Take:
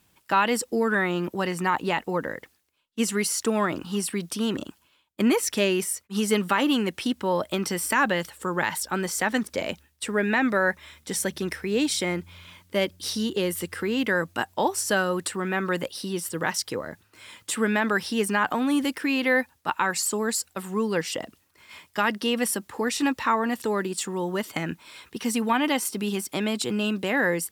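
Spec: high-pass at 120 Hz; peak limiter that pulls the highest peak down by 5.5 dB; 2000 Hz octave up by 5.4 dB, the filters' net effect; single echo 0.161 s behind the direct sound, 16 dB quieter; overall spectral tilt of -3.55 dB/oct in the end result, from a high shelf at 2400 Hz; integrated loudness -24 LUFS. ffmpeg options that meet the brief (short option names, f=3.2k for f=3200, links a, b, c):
-af "highpass=120,equalizer=f=2k:t=o:g=8.5,highshelf=f=2.4k:g=-4,alimiter=limit=-11.5dB:level=0:latency=1,aecho=1:1:161:0.158,volume=1.5dB"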